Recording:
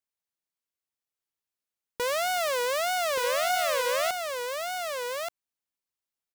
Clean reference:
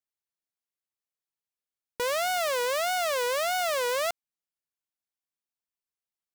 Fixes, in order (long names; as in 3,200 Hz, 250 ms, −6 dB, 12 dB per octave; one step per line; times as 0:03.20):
echo removal 1,178 ms −5 dB